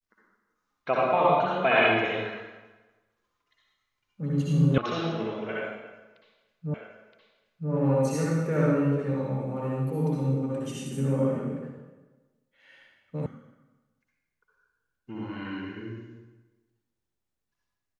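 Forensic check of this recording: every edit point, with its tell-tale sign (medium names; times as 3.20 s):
4.78 s: sound stops dead
6.74 s: repeat of the last 0.97 s
13.26 s: sound stops dead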